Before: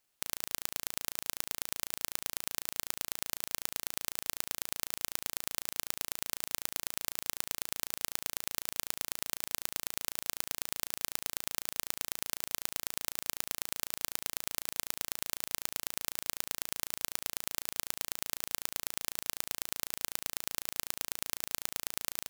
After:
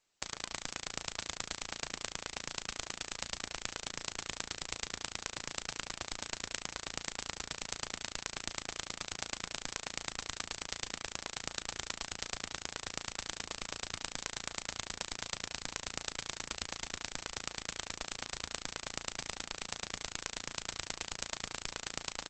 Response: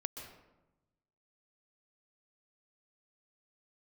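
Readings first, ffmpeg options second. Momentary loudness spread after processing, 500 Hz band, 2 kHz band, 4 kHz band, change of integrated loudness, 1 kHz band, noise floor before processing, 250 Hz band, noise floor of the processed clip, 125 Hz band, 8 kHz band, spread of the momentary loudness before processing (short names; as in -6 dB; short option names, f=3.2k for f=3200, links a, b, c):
1 LU, +2.0 dB, +1.5 dB, +1.0 dB, -4.0 dB, +2.0 dB, -78 dBFS, +2.5 dB, -57 dBFS, +4.0 dB, -3.0 dB, 1 LU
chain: -af "volume=1.5dB" -ar 48000 -c:a libopus -b:a 10k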